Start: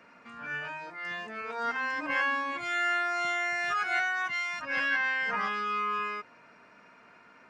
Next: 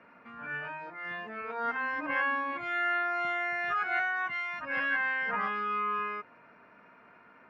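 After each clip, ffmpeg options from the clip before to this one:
-af "lowpass=2200"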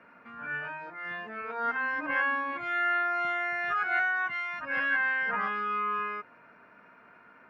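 -af "equalizer=f=1500:w=4.7:g=4"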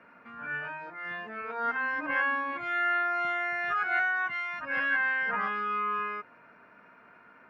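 -af anull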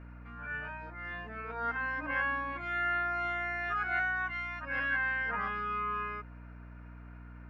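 -af "aeval=exprs='val(0)+0.00708*(sin(2*PI*60*n/s)+sin(2*PI*2*60*n/s)/2+sin(2*PI*3*60*n/s)/3+sin(2*PI*4*60*n/s)/4+sin(2*PI*5*60*n/s)/5)':c=same,volume=0.631"

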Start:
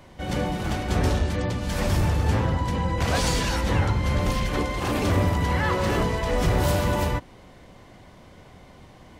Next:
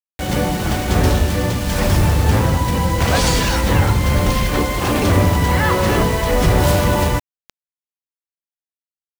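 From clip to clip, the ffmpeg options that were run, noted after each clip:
-af "acrusher=bits=5:mix=0:aa=0.000001,volume=2.37"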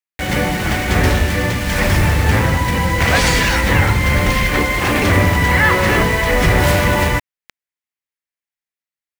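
-af "equalizer=f=2000:t=o:w=0.86:g=10"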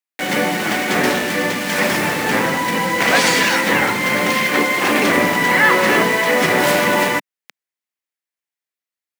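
-af "highpass=f=200:w=0.5412,highpass=f=200:w=1.3066,volume=1.12"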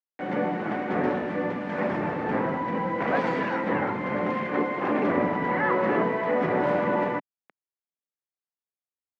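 -af "lowpass=1100,volume=0.473"

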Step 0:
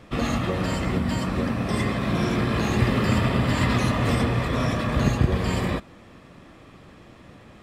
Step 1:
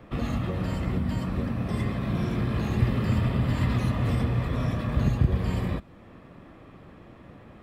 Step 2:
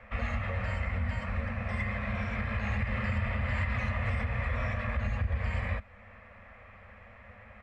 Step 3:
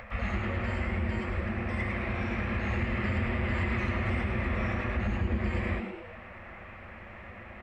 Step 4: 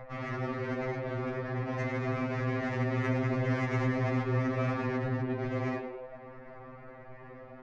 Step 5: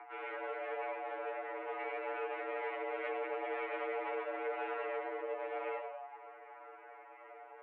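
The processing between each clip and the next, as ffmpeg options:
-filter_complex "[0:a]equalizer=f=6800:t=o:w=2.2:g=-13,acrossover=split=180|3000[s0][s1][s2];[s1]acompressor=threshold=0.00562:ratio=1.5[s3];[s0][s3][s2]amix=inputs=3:normalize=0"
-af "firequalizer=gain_entry='entry(100,0);entry(150,-28);entry(210,-4);entry(310,-30);entry(510,-2);entry(1000,-2);entry(2100,9);entry(3400,-8);entry(7900,-9);entry(11000,-28)':delay=0.05:min_phase=1,alimiter=limit=0.0794:level=0:latency=1:release=98"
-filter_complex "[0:a]acompressor=mode=upward:threshold=0.0112:ratio=2.5,asplit=2[s0][s1];[s1]asplit=6[s2][s3][s4][s5][s6][s7];[s2]adelay=105,afreqshift=140,volume=0.473[s8];[s3]adelay=210,afreqshift=280,volume=0.243[s9];[s4]adelay=315,afreqshift=420,volume=0.123[s10];[s5]adelay=420,afreqshift=560,volume=0.0631[s11];[s6]adelay=525,afreqshift=700,volume=0.032[s12];[s7]adelay=630,afreqshift=840,volume=0.0164[s13];[s8][s9][s10][s11][s12][s13]amix=inputs=6:normalize=0[s14];[s0][s14]amix=inputs=2:normalize=0"
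-af "adynamicsmooth=sensitivity=2:basefreq=820,afftfilt=real='re*2.45*eq(mod(b,6),0)':imag='im*2.45*eq(mod(b,6),0)':win_size=2048:overlap=0.75,volume=1.88"
-af "asoftclip=type=tanh:threshold=0.0531,highpass=f=190:t=q:w=0.5412,highpass=f=190:t=q:w=1.307,lowpass=f=2900:t=q:w=0.5176,lowpass=f=2900:t=q:w=0.7071,lowpass=f=2900:t=q:w=1.932,afreqshift=200,volume=0.631"

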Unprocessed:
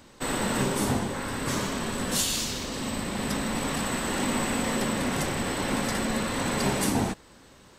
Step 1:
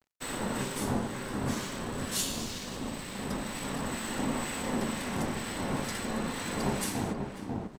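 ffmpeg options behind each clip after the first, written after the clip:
-filter_complex "[0:a]asplit=2[s0][s1];[s1]adelay=542,lowpass=f=890:p=1,volume=0.708,asplit=2[s2][s3];[s3]adelay=542,lowpass=f=890:p=1,volume=0.39,asplit=2[s4][s5];[s5]adelay=542,lowpass=f=890:p=1,volume=0.39,asplit=2[s6][s7];[s7]adelay=542,lowpass=f=890:p=1,volume=0.39,asplit=2[s8][s9];[s9]adelay=542,lowpass=f=890:p=1,volume=0.39[s10];[s0][s2][s4][s6][s8][s10]amix=inputs=6:normalize=0,acrossover=split=1400[s11][s12];[s11]aeval=exprs='val(0)*(1-0.5/2+0.5/2*cos(2*PI*2.1*n/s))':c=same[s13];[s12]aeval=exprs='val(0)*(1-0.5/2-0.5/2*cos(2*PI*2.1*n/s))':c=same[s14];[s13][s14]amix=inputs=2:normalize=0,aeval=exprs='sgn(val(0))*max(abs(val(0))-0.00447,0)':c=same,volume=0.668"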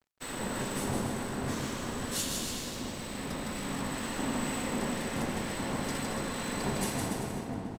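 -af "aecho=1:1:160|288|390.4|472.3|537.9:0.631|0.398|0.251|0.158|0.1,volume=0.75"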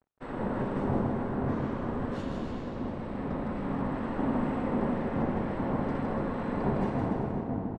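-af "lowpass=1100,volume=1.68"

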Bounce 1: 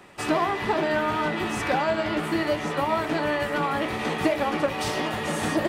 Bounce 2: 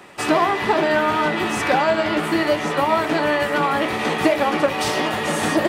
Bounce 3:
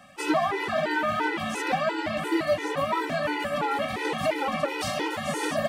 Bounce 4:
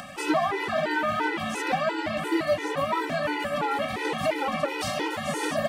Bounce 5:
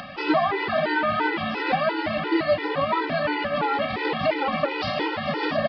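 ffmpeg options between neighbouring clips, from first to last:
-af "lowshelf=f=120:g=-9.5,volume=2.11"
-af "afftfilt=real='re*gt(sin(2*PI*2.9*pts/sr)*(1-2*mod(floor(b*sr/1024/260),2)),0)':imag='im*gt(sin(2*PI*2.9*pts/sr)*(1-2*mod(floor(b*sr/1024/260),2)),0)':win_size=1024:overlap=0.75,volume=0.631"
-af "acompressor=mode=upward:threshold=0.0282:ratio=2.5"
-af "aresample=11025,aresample=44100,volume=1.41"

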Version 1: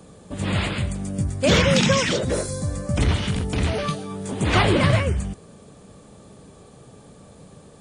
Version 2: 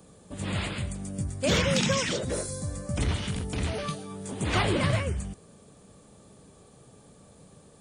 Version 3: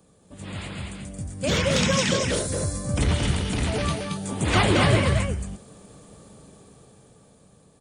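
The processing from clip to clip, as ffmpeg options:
-af "highshelf=f=8000:g=8.5,volume=0.422"
-af "dynaudnorm=f=360:g=9:m=3.35,aecho=1:1:225:0.668,volume=0.562"

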